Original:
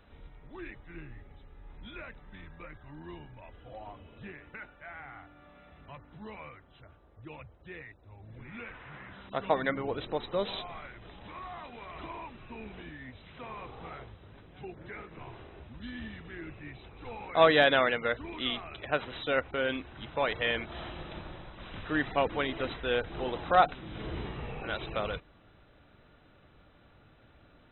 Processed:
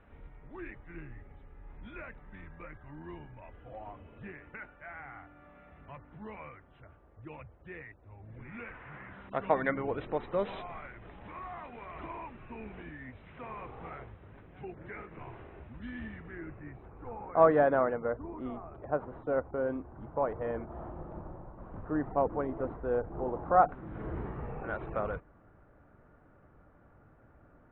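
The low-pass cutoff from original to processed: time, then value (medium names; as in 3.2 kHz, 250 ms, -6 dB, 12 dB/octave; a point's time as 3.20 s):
low-pass 24 dB/octave
16.01 s 2.4 kHz
16.54 s 1.7 kHz
18.04 s 1.1 kHz
23.33 s 1.1 kHz
23.95 s 1.6 kHz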